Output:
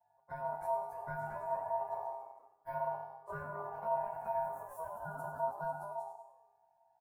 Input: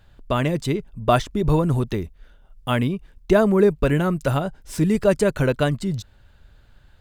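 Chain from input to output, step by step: frequency axis rescaled in octaves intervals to 108%; high-pass 65 Hz 24 dB/octave; static phaser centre 1.1 kHz, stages 4; frequency-shifting echo 97 ms, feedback 44%, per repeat -100 Hz, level -9 dB; compression, threshold -27 dBFS, peak gain reduction 10 dB; ever faster or slower copies 340 ms, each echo +2 st, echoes 3, each echo -6 dB; high-order bell 2.8 kHz -14 dB 2.8 oct; feedback comb 130 Hz, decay 0.68 s, harmonics odd, mix 90%; on a send at -14.5 dB: reverberation RT60 0.60 s, pre-delay 70 ms; on the sum: time-frequency box 4.97–5.89 s, 890–2100 Hz -26 dB; bass shelf 220 Hz +7.5 dB; ring modulator 800 Hz; trim +1 dB

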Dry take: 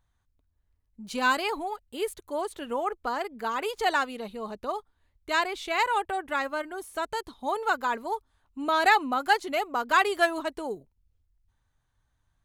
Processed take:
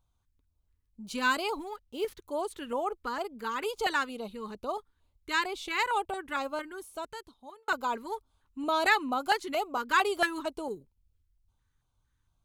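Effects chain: 1.53–2.22 s: median filter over 5 samples; LFO notch square 2.2 Hz 680–1800 Hz; 6.58–7.68 s: fade out linear; trim -1.5 dB

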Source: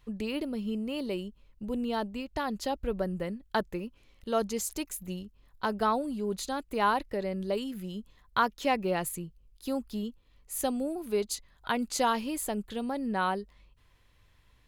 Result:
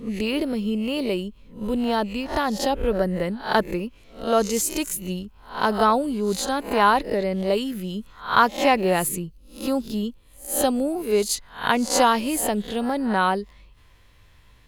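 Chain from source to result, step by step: reverse spectral sustain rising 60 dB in 0.37 s; trim +8 dB

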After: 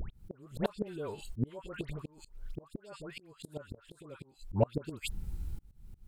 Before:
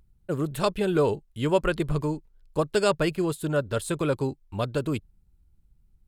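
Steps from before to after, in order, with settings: in parallel at +1.5 dB: compression 16:1, threshold -35 dBFS, peak gain reduction 19.5 dB; on the sum: phase dispersion highs, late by 112 ms, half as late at 1.3 kHz; inverted gate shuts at -17 dBFS, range -33 dB; slow attack 551 ms; trim +16 dB

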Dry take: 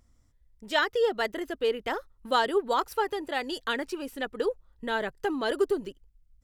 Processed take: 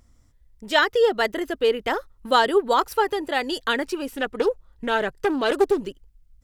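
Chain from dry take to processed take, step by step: 4.07–5.87 s: loudspeaker Doppler distortion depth 0.21 ms; trim +6.5 dB

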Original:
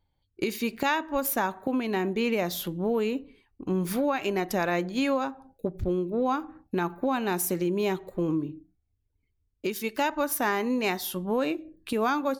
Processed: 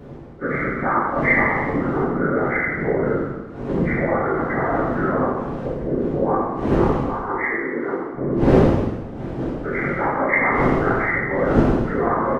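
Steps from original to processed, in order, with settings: knee-point frequency compression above 1.1 kHz 4:1; wind noise 350 Hz -30 dBFS; 7.02–8.14 s: rippled Chebyshev high-pass 270 Hz, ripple 9 dB; whisper effect; frequency-shifting echo 105 ms, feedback 34%, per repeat -62 Hz, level -8 dB; plate-style reverb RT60 1.1 s, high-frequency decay 0.95×, DRR -5.5 dB; trim -1.5 dB

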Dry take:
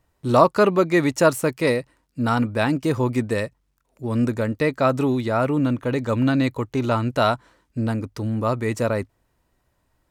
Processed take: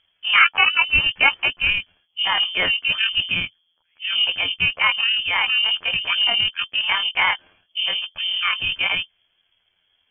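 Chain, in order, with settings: rotating-head pitch shifter +9.5 st; frequency inversion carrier 3.3 kHz; trim +1.5 dB

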